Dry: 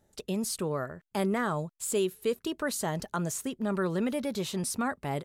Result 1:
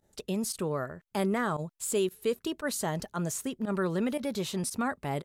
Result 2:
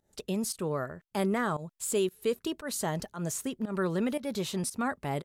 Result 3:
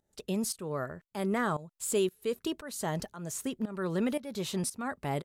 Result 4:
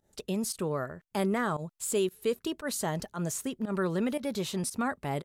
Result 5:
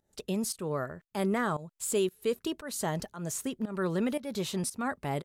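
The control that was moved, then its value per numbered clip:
fake sidechain pumping, release: 62, 178, 461, 113, 289 milliseconds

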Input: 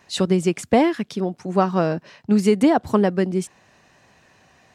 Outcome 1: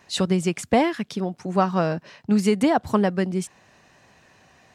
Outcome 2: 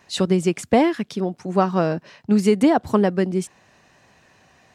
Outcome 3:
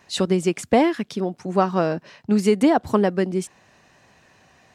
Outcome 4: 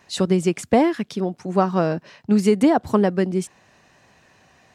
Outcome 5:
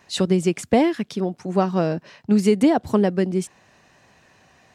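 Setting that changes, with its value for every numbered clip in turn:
dynamic equaliser, frequency: 350, 9,000, 120, 3,000, 1,200 Hertz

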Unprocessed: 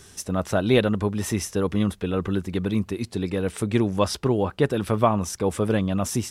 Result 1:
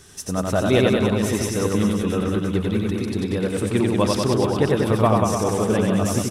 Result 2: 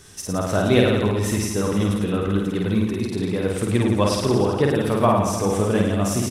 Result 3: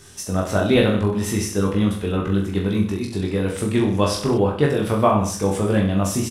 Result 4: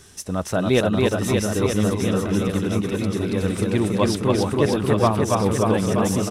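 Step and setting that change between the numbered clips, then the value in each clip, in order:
reverse bouncing-ball delay, first gap: 90, 50, 20, 280 milliseconds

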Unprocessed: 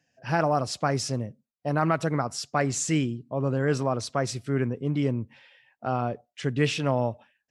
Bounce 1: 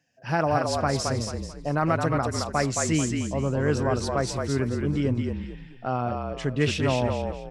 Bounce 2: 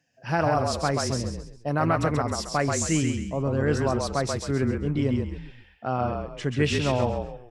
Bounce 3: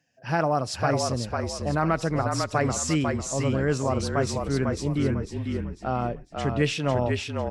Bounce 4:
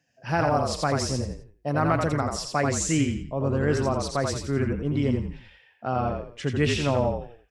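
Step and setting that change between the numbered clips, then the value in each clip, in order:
echo with shifted repeats, delay time: 219, 134, 498, 85 milliseconds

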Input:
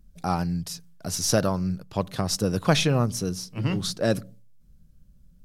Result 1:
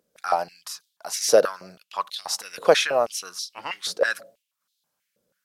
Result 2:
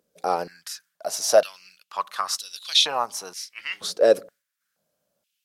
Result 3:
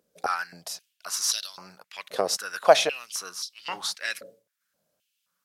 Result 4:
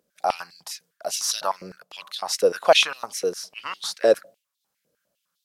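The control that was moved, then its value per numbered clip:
high-pass on a step sequencer, speed: 6.2, 2.1, 3.8, 9.9 Hertz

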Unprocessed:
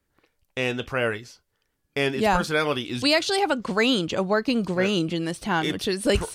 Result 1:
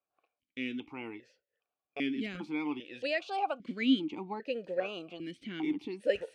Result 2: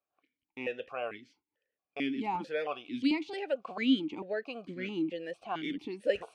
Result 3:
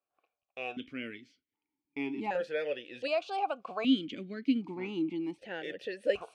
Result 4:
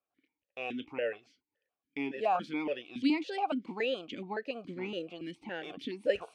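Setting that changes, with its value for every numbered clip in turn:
formant filter that steps through the vowels, speed: 2.5, 4.5, 1.3, 7.1 Hertz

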